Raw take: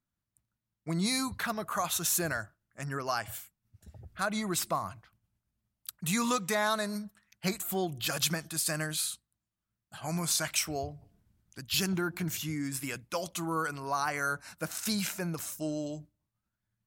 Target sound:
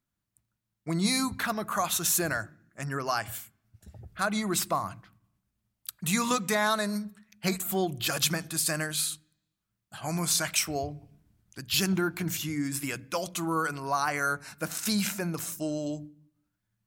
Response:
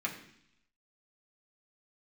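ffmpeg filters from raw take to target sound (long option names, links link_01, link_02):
-filter_complex "[0:a]asplit=2[link_01][link_02];[1:a]atrim=start_sample=2205,lowshelf=frequency=460:gain=10[link_03];[link_02][link_03]afir=irnorm=-1:irlink=0,volume=-22.5dB[link_04];[link_01][link_04]amix=inputs=2:normalize=0,volume=2.5dB"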